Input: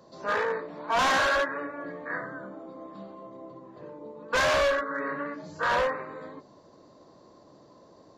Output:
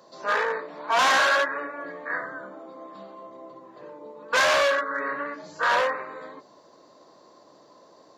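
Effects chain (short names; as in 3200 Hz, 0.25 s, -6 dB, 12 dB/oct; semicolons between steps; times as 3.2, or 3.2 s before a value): HPF 640 Hz 6 dB/oct; gain +5 dB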